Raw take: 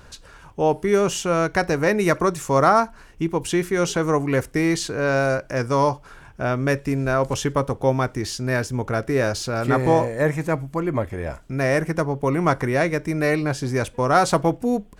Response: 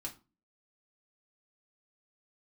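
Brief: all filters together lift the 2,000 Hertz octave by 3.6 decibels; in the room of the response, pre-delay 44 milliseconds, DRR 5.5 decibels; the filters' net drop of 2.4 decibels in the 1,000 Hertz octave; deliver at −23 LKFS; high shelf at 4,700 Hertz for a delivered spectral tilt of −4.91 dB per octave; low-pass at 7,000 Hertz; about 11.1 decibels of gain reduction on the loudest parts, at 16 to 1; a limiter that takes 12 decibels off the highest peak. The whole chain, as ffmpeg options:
-filter_complex "[0:a]lowpass=7000,equalizer=frequency=1000:width_type=o:gain=-5.5,equalizer=frequency=2000:width_type=o:gain=5.5,highshelf=frequency=4700:gain=6.5,acompressor=threshold=-24dB:ratio=16,alimiter=level_in=2.5dB:limit=-24dB:level=0:latency=1,volume=-2.5dB,asplit=2[link_01][link_02];[1:a]atrim=start_sample=2205,adelay=44[link_03];[link_02][link_03]afir=irnorm=-1:irlink=0,volume=-3.5dB[link_04];[link_01][link_04]amix=inputs=2:normalize=0,volume=11dB"

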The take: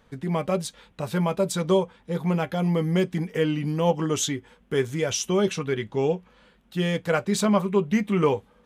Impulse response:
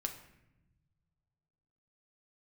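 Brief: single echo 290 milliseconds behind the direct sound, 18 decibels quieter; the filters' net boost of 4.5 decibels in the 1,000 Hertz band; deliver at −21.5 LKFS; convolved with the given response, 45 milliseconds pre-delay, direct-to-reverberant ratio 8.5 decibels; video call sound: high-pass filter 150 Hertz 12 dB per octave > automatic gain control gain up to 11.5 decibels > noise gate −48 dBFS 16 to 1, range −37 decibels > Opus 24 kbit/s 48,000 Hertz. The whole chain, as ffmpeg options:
-filter_complex "[0:a]equalizer=frequency=1000:width_type=o:gain=5.5,aecho=1:1:290:0.126,asplit=2[link_01][link_02];[1:a]atrim=start_sample=2205,adelay=45[link_03];[link_02][link_03]afir=irnorm=-1:irlink=0,volume=-8.5dB[link_04];[link_01][link_04]amix=inputs=2:normalize=0,highpass=150,dynaudnorm=maxgain=11.5dB,agate=range=-37dB:threshold=-48dB:ratio=16,volume=3dB" -ar 48000 -c:a libopus -b:a 24k

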